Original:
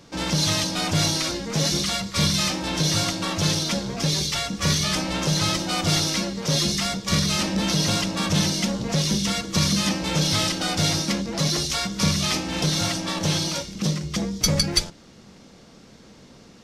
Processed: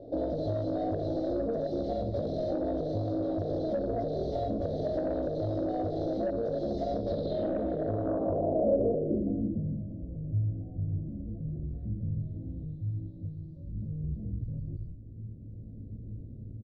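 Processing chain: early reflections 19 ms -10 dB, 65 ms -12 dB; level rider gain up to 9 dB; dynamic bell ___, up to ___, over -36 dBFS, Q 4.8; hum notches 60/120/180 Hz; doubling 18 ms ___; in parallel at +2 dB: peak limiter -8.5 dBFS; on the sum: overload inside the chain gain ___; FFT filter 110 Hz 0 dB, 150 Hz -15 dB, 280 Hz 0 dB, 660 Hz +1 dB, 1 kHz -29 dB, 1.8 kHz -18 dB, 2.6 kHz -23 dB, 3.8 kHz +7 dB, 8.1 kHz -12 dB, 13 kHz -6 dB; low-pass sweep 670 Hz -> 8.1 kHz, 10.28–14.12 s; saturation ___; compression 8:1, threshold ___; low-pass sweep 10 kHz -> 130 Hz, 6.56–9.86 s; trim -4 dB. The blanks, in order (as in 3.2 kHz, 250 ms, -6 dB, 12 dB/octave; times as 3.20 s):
3.3 kHz, -3 dB, -7 dB, 14.5 dB, -9 dBFS, -24 dBFS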